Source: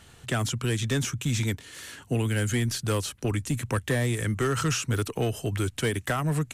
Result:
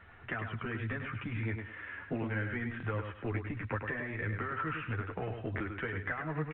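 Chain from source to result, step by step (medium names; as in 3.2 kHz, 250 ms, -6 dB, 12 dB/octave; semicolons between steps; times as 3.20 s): steep low-pass 2.1 kHz 36 dB/octave; tilt shelf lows -6 dB, about 910 Hz; compression 20:1, threshold -32 dBFS, peak gain reduction 10.5 dB; chorus voices 4, 0.56 Hz, delay 11 ms, depth 2.1 ms; feedback delay 102 ms, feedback 21%, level -6.5 dB; buffer glitch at 2.78/5.56 s, samples 1024, times 1; trim +2.5 dB; A-law 64 kbps 8 kHz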